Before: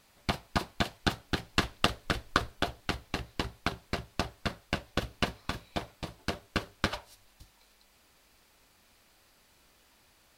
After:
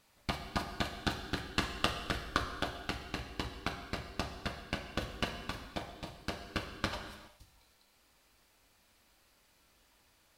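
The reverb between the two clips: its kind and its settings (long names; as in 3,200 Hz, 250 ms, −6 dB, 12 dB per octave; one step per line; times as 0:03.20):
reverb whose tail is shaped and stops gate 440 ms falling, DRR 4.5 dB
level −5.5 dB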